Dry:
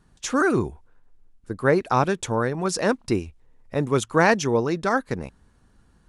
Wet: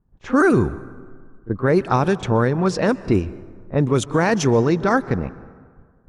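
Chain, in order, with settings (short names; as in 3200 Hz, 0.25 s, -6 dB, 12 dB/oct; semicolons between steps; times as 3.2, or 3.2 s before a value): gate -55 dBFS, range -15 dB; low-pass opened by the level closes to 950 Hz, open at -15.5 dBFS; low shelf 310 Hz +6.5 dB; limiter -10 dBFS, peak gain reduction 7.5 dB; pre-echo 33 ms -18 dB; plate-style reverb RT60 1.8 s, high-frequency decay 0.5×, pre-delay 0.11 s, DRR 18.5 dB; gain +3.5 dB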